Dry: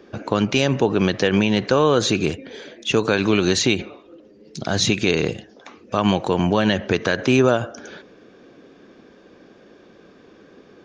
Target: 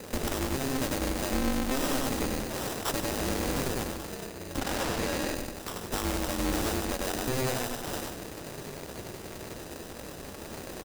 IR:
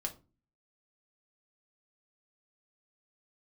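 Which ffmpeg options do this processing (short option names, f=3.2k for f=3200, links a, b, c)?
-filter_complex "[0:a]asettb=1/sr,asplit=3[a][b][c];[a]atrim=end=1.314[d];[b]atrim=start=1.31:end=1.99,asetpts=PTS-STARTPTS,afade=t=in:d=0.004:c=qsin,afade=t=out:st=0.676:d=0.004:c=qsin,lowshelf=f=160:t=q:w=1.5:g=10.5[e];[c]atrim=start=1.986[f];[d][e]acrossfade=d=0.004:c1=hsin:c2=qsin[g];[g][f]acrossfade=d=0.004:c1=qsin:c2=hsin,aecho=1:1:96|192|288:0.708|0.17|0.0408,acrusher=samples=20:mix=1:aa=0.000001,asettb=1/sr,asplit=3[h][i][j];[h]atrim=end=4.614[k];[i]atrim=start=4.61:end=5.35,asetpts=PTS-STARTPTS,afade=t=in:d=0.004:c=qsin,afade=t=out:st=0.736:d=0.004:c=qsin,asplit=2[l][m];[m]highpass=f=720:p=1,volume=13dB,asoftclip=type=tanh:threshold=-2.5dB[n];[l][n]amix=inputs=2:normalize=0,lowpass=f=3.4k:p=1,volume=-6dB[o];[j]atrim=start=5.346[p];[k][o]acrossfade=d=0.004:c1=hsin:c2=qsin[q];[q][p]acrossfade=d=0.004:c1=qsin:c2=hsin,acompressor=threshold=-31dB:ratio=6,asoftclip=type=tanh:threshold=-29dB,bass=f=250:g=5,treble=f=4k:g=9,aecho=1:1:147:0.211,aeval=exprs='val(0)*sgn(sin(2*PI*130*n/s))':c=same,volume=3dB"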